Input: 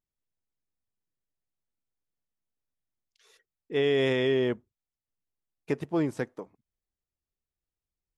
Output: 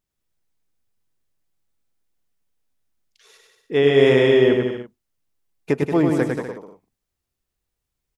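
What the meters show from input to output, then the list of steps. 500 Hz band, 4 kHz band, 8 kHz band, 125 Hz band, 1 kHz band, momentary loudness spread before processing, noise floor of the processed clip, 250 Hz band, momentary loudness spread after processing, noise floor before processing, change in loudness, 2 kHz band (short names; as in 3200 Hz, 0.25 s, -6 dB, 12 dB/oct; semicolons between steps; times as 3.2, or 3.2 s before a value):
+11.0 dB, +8.0 dB, n/a, +10.5 dB, +10.5 dB, 13 LU, -82 dBFS, +10.5 dB, 14 LU, under -85 dBFS, +10.0 dB, +9.5 dB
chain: bouncing-ball echo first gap 0.1 s, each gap 0.8×, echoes 5; dynamic EQ 4600 Hz, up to -4 dB, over -45 dBFS, Q 0.9; gain +8.5 dB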